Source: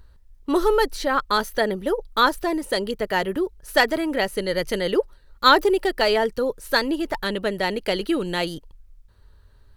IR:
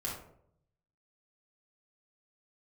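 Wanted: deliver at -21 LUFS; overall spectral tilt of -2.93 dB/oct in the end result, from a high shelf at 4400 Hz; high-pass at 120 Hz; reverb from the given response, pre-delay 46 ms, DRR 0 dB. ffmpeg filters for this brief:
-filter_complex "[0:a]highpass=120,highshelf=f=4.4k:g=9,asplit=2[a][b];[1:a]atrim=start_sample=2205,adelay=46[c];[b][c]afir=irnorm=-1:irlink=0,volume=-2.5dB[d];[a][d]amix=inputs=2:normalize=0,volume=-2.5dB"

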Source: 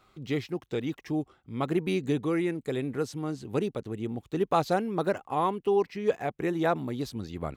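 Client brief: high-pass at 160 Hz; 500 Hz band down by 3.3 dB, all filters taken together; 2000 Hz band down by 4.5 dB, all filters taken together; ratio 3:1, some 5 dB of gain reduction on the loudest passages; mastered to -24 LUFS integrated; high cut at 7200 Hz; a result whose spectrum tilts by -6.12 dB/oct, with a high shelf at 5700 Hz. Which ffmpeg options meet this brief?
-af "highpass=160,lowpass=7.2k,equalizer=f=500:t=o:g=-4,equalizer=f=2k:t=o:g=-5,highshelf=f=5.7k:g=-5.5,acompressor=threshold=-29dB:ratio=3,volume=11.5dB"

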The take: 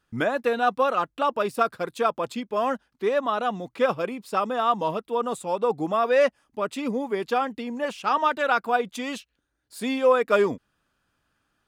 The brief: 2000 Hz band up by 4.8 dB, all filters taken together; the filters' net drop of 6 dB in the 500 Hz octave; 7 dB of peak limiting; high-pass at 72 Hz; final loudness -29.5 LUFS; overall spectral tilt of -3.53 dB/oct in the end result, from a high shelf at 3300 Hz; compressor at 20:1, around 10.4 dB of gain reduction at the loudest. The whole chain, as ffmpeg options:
-af "highpass=72,equalizer=f=500:t=o:g=-7.5,equalizer=f=2k:t=o:g=6,highshelf=f=3.3k:g=4.5,acompressor=threshold=-26dB:ratio=20,volume=4dB,alimiter=limit=-18.5dB:level=0:latency=1"

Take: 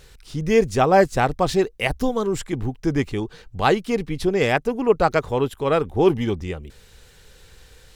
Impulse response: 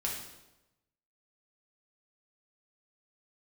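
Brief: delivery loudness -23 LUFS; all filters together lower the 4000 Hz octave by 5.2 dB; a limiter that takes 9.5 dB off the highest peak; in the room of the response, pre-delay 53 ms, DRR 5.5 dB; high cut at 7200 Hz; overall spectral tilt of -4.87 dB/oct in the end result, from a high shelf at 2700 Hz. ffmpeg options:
-filter_complex "[0:a]lowpass=7.2k,highshelf=f=2.7k:g=-4,equalizer=f=4k:t=o:g=-3.5,alimiter=limit=-13.5dB:level=0:latency=1,asplit=2[a][b];[1:a]atrim=start_sample=2205,adelay=53[c];[b][c]afir=irnorm=-1:irlink=0,volume=-9dB[d];[a][d]amix=inputs=2:normalize=0,volume=1dB"

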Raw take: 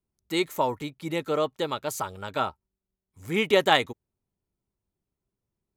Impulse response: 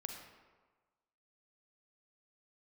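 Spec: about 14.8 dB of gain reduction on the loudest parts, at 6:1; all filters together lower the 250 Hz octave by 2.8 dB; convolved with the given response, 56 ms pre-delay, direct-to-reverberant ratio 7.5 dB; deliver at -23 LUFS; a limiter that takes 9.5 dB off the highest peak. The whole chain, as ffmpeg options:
-filter_complex "[0:a]equalizer=f=250:t=o:g=-4.5,acompressor=threshold=-32dB:ratio=6,alimiter=level_in=5dB:limit=-24dB:level=0:latency=1,volume=-5dB,asplit=2[a][b];[1:a]atrim=start_sample=2205,adelay=56[c];[b][c]afir=irnorm=-1:irlink=0,volume=-5.5dB[d];[a][d]amix=inputs=2:normalize=0,volume=17dB"

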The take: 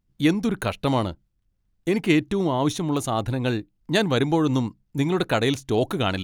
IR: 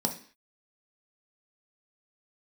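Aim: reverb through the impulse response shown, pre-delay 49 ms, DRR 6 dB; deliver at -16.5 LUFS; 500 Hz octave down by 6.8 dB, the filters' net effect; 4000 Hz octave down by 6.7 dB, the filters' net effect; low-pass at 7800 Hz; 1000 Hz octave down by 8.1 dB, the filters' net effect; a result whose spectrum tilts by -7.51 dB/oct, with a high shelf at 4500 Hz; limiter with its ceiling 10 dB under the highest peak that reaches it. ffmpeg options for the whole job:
-filter_complex "[0:a]lowpass=7.8k,equalizer=f=500:t=o:g=-7.5,equalizer=f=1k:t=o:g=-7.5,equalizer=f=4k:t=o:g=-4,highshelf=f=4.5k:g=-8,alimiter=limit=-18dB:level=0:latency=1,asplit=2[a][b];[1:a]atrim=start_sample=2205,adelay=49[c];[b][c]afir=irnorm=-1:irlink=0,volume=-12.5dB[d];[a][d]amix=inputs=2:normalize=0,volume=9.5dB"

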